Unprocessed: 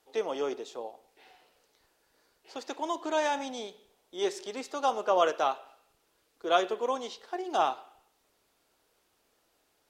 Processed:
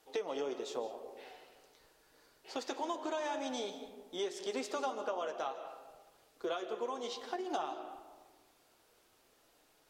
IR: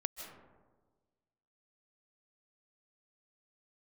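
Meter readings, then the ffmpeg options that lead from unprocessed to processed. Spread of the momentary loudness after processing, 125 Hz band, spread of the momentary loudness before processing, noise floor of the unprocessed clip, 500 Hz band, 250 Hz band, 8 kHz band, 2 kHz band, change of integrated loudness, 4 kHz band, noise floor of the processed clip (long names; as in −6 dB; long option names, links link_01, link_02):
15 LU, can't be measured, 16 LU, −73 dBFS, −7.5 dB, −4.0 dB, −4.5 dB, −8.0 dB, −8.5 dB, −6.0 dB, −69 dBFS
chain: -filter_complex "[0:a]acompressor=threshold=-37dB:ratio=12,flanger=delay=6.2:depth=2.6:regen=-51:speed=0.51:shape=triangular,asplit=2[link_01][link_02];[1:a]atrim=start_sample=2205[link_03];[link_02][link_03]afir=irnorm=-1:irlink=0,volume=2.5dB[link_04];[link_01][link_04]amix=inputs=2:normalize=0"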